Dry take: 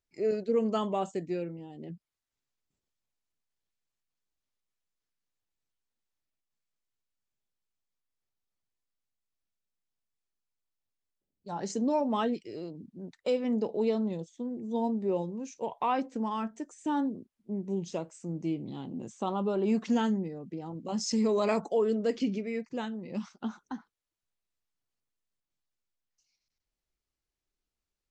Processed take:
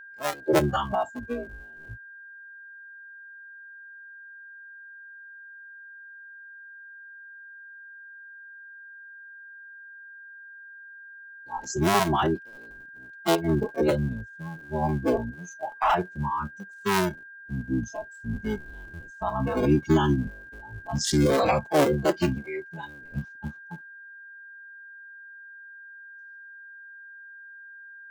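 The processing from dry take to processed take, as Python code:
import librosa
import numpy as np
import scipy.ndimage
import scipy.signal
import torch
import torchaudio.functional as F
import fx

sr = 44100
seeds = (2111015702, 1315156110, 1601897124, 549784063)

y = fx.cycle_switch(x, sr, every=3, mode='inverted')
y = fx.noise_reduce_blind(y, sr, reduce_db=21)
y = y + 10.0 ** (-50.0 / 20.0) * np.sin(2.0 * np.pi * 1600.0 * np.arange(len(y)) / sr)
y = y * 10.0 ** (7.0 / 20.0)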